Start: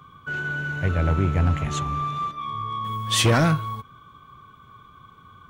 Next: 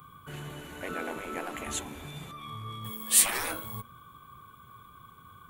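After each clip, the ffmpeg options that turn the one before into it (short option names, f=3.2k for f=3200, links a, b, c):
-af "bandreject=f=46.31:t=h:w=4,bandreject=f=92.62:t=h:w=4,bandreject=f=138.93:t=h:w=4,bandreject=f=185.24:t=h:w=4,bandreject=f=231.55:t=h:w=4,bandreject=f=277.86:t=h:w=4,bandreject=f=324.17:t=h:w=4,bandreject=f=370.48:t=h:w=4,bandreject=f=416.79:t=h:w=4,bandreject=f=463.1:t=h:w=4,bandreject=f=509.41:t=h:w=4,bandreject=f=555.72:t=h:w=4,bandreject=f=602.03:t=h:w=4,bandreject=f=648.34:t=h:w=4,afftfilt=real='re*lt(hypot(re,im),0.2)':imag='im*lt(hypot(re,im),0.2)':win_size=1024:overlap=0.75,aexciter=amount=7.1:drive=3.9:freq=8k,volume=-3.5dB"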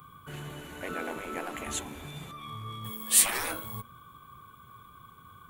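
-af "acrusher=bits=9:mode=log:mix=0:aa=0.000001"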